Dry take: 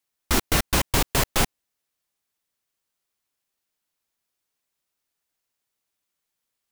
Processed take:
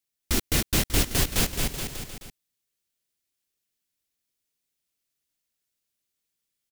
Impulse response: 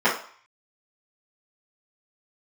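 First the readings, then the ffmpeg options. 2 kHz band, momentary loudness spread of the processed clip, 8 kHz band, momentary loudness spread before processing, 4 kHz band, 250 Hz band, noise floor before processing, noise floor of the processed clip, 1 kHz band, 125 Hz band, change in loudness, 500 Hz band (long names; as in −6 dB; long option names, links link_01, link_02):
−4.0 dB, 14 LU, 0.0 dB, 3 LU, −1.0 dB, −1.0 dB, −82 dBFS, −82 dBFS, −8.5 dB, 0.0 dB, −2.0 dB, −4.0 dB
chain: -filter_complex "[0:a]equalizer=frequency=980:width=0.83:gain=-10,asplit=2[link_01][link_02];[link_02]aecho=0:1:230|425.5|591.7|732.9|853:0.631|0.398|0.251|0.158|0.1[link_03];[link_01][link_03]amix=inputs=2:normalize=0,volume=-2dB"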